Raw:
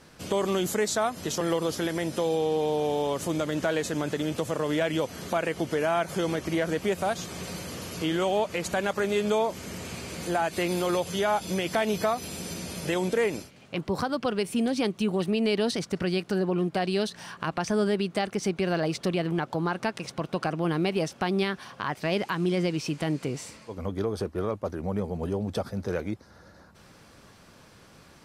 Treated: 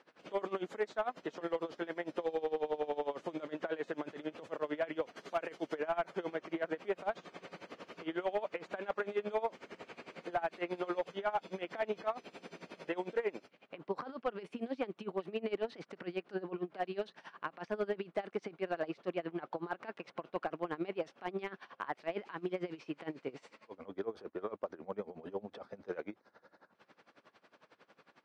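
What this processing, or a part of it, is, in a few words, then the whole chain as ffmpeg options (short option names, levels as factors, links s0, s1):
helicopter radio: -filter_complex "[0:a]highpass=350,lowpass=2900,aeval=exprs='val(0)*pow(10,-21*(0.5-0.5*cos(2*PI*11*n/s))/20)':c=same,asoftclip=type=hard:threshold=0.0668,acrossover=split=2800[s0][s1];[s1]acompressor=threshold=0.00141:ratio=4:attack=1:release=60[s2];[s0][s2]amix=inputs=2:normalize=0,asettb=1/sr,asplit=3[s3][s4][s5];[s3]atrim=end=5.164[s6];[s4]atrim=start=5.16:end=5.75,asetpts=PTS-STARTPTS,afade=t=in:d=0.004:c=qsin,afade=t=out:st=0.586:d=0.004:c=qsin,bass=f=250:g=-1,treble=f=4000:g=9[s7];[s5]atrim=start=5.746[s8];[s6][s7]acrossfade=d=0.004:c1=hsin:c2=qsin[s9];[s9][s8]acrossfade=d=0.004:c1=qsin:c2=hsin,volume=0.75"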